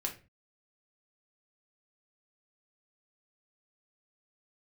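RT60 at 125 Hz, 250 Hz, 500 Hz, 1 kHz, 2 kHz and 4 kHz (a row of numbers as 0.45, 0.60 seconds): 0.45, 0.45, 0.35, 0.30, 0.30, 0.25 seconds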